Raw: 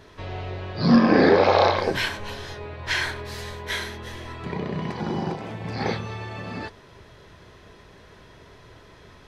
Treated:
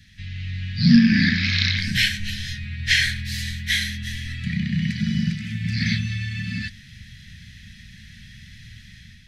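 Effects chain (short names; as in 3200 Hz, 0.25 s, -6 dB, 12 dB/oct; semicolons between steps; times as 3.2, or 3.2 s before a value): Chebyshev band-stop 220–1800 Hz, order 4; AGC gain up to 7 dB; gain +1.5 dB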